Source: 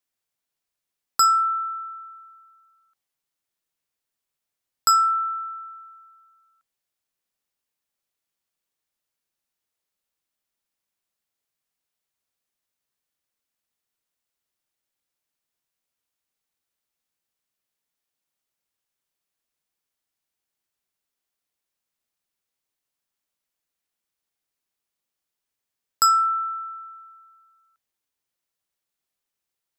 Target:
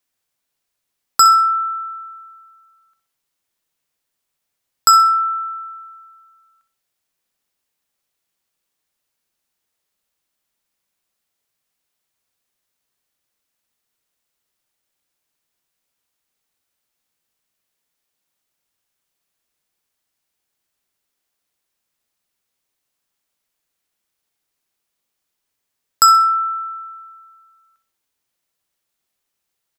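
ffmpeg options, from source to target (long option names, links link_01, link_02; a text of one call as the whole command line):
ffmpeg -i in.wav -af "aecho=1:1:63|126|189:0.282|0.0902|0.0289,volume=7dB" out.wav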